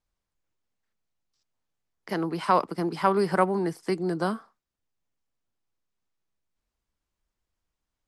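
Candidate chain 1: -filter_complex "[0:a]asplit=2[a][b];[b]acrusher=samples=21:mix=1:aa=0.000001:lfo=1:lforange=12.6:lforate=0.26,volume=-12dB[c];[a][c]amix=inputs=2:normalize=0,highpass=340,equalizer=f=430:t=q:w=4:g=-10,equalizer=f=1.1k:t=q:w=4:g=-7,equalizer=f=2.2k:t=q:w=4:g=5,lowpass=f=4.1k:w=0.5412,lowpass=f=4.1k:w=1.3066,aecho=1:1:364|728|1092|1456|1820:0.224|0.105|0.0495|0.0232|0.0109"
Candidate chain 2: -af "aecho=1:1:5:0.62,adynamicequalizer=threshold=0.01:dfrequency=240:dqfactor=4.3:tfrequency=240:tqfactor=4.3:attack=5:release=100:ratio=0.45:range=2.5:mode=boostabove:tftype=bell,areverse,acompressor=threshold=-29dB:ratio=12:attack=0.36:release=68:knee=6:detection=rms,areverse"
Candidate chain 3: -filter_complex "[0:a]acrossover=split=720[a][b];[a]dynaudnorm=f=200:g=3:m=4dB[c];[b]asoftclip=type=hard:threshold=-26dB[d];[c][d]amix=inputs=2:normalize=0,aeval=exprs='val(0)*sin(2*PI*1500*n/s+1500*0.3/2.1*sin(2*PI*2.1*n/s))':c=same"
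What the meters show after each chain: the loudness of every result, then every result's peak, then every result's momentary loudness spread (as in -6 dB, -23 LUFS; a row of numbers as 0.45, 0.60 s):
-29.5, -36.0, -25.5 LUFS; -9.5, -26.0, -10.5 dBFS; 15, 5, 6 LU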